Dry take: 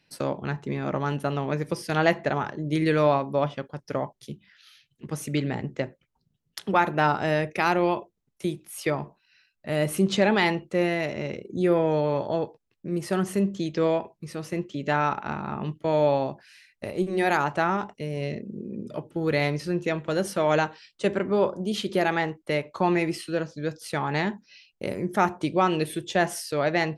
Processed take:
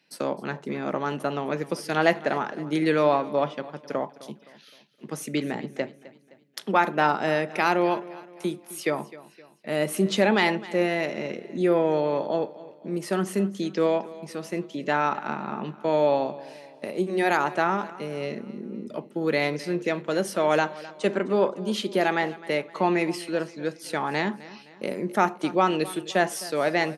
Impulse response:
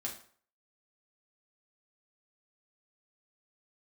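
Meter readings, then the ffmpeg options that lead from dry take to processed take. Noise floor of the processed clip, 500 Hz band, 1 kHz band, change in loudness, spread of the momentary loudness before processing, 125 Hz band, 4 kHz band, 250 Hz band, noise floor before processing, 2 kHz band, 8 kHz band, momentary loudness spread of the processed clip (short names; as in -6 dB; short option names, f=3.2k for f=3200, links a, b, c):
-53 dBFS, +0.5 dB, +0.5 dB, +0.5 dB, 12 LU, -5.0 dB, +0.5 dB, -0.5 dB, -75 dBFS, +1.0 dB, +0.5 dB, 13 LU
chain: -filter_complex "[0:a]highpass=f=180:w=0.5412,highpass=f=180:w=1.3066,aecho=1:1:259|518|777|1036:0.119|0.0535|0.0241|0.0108,asplit=2[a][b];[1:a]atrim=start_sample=2205[c];[b][c]afir=irnorm=-1:irlink=0,volume=-18.5dB[d];[a][d]amix=inputs=2:normalize=0"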